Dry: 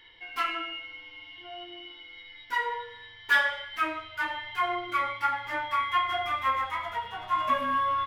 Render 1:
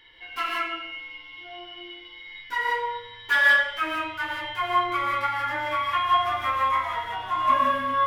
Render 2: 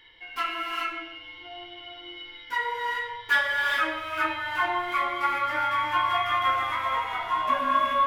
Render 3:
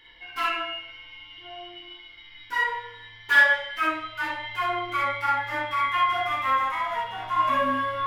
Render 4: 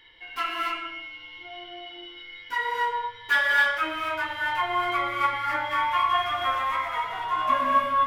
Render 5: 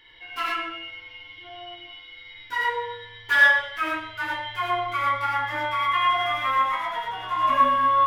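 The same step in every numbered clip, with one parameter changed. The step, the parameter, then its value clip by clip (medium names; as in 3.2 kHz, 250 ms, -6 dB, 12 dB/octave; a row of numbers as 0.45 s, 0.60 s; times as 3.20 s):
gated-style reverb, gate: 200 ms, 450 ms, 80 ms, 310 ms, 130 ms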